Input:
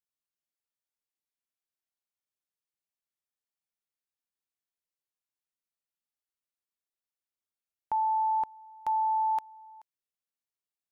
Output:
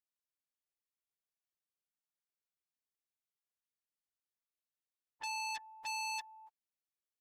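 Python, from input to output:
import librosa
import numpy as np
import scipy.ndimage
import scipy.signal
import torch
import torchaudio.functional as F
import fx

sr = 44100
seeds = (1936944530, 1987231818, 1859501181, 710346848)

y = fx.stretch_vocoder_free(x, sr, factor=0.66)
y = fx.transformer_sat(y, sr, knee_hz=3900.0)
y = F.gain(torch.from_numpy(y), -3.5).numpy()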